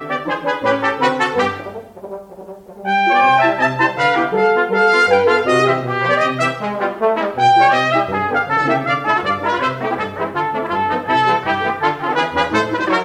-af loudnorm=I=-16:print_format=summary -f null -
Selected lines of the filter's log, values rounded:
Input Integrated:    -16.1 LUFS
Input True Peak:      -1.2 dBTP
Input LRA:             3.3 LU
Input Threshold:     -26.4 LUFS